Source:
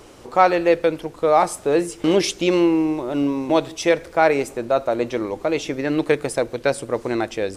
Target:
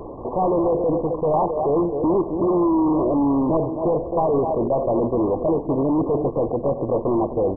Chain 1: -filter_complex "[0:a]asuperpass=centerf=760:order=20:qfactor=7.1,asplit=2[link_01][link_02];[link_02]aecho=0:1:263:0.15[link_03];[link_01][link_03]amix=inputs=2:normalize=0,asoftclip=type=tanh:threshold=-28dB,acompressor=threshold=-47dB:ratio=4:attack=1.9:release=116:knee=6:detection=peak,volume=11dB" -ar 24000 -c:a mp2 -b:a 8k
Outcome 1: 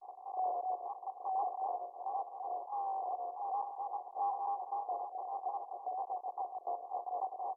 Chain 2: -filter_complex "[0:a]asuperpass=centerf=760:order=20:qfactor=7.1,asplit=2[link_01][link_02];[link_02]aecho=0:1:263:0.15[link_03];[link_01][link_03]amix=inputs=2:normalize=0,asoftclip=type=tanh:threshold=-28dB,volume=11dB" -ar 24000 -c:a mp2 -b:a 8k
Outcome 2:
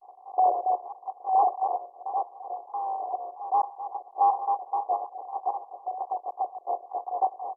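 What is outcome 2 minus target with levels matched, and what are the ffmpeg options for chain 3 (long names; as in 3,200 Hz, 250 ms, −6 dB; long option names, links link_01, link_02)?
1,000 Hz band +10.0 dB
-filter_complex "[0:a]asplit=2[link_01][link_02];[link_02]aecho=0:1:263:0.15[link_03];[link_01][link_03]amix=inputs=2:normalize=0,asoftclip=type=tanh:threshold=-28dB,volume=11dB" -ar 24000 -c:a mp2 -b:a 8k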